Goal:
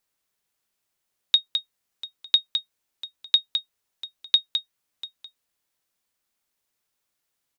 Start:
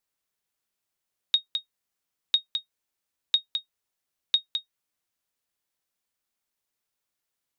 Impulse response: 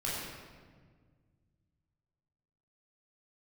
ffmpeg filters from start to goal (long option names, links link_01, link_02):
-af "aecho=1:1:693:0.126,volume=4.5dB"